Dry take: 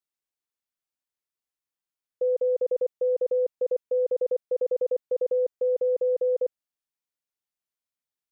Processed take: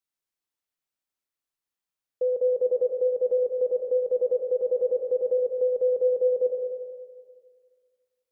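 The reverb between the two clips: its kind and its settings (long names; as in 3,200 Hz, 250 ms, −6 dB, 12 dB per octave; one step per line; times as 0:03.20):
comb and all-pass reverb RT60 1.8 s, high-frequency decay 0.65×, pre-delay 20 ms, DRR 3 dB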